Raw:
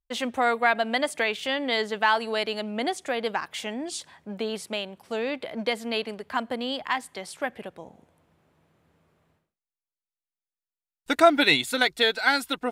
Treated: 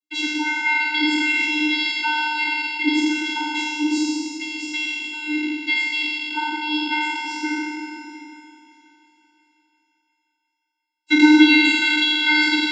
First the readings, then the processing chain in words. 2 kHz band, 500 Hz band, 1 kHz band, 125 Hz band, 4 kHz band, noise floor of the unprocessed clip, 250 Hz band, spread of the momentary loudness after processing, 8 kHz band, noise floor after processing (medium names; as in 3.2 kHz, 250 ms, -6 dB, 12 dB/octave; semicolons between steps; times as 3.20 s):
+8.0 dB, no reading, +0.5 dB, under -15 dB, +7.0 dB, under -85 dBFS, +12.5 dB, 12 LU, +4.0 dB, -77 dBFS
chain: spectral sustain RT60 2.48 s; resonant high shelf 1.8 kHz +9.5 dB, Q 3; in parallel at -1 dB: peak limiter -1.5 dBFS, peak gain reduction 10 dB; on the sum: vocoder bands 32, square 303 Hz; on a send: thinning echo 352 ms, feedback 61%, high-pass 330 Hz, level -16 dB; on the sum: Schroeder reverb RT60 1.6 s, combs from 28 ms, DRR 5.5 dB; trim -9.5 dB